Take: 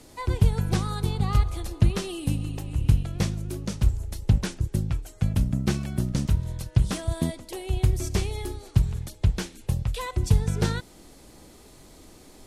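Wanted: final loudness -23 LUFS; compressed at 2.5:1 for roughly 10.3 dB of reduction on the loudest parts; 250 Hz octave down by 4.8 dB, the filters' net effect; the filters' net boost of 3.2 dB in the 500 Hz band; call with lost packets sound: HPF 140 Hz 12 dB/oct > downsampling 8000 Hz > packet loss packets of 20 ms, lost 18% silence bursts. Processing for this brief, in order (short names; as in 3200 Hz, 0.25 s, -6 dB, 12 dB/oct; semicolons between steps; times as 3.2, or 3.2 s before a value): bell 250 Hz -8.5 dB; bell 500 Hz +7.5 dB; compressor 2.5:1, threshold -30 dBFS; HPF 140 Hz 12 dB/oct; downsampling 8000 Hz; packet loss packets of 20 ms, lost 18% silence bursts; gain +16 dB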